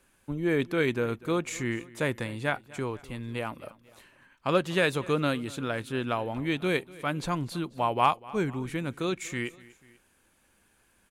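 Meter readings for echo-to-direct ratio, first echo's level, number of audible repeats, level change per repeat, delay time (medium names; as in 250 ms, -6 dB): -20.0 dB, -21.0 dB, 2, -5.0 dB, 245 ms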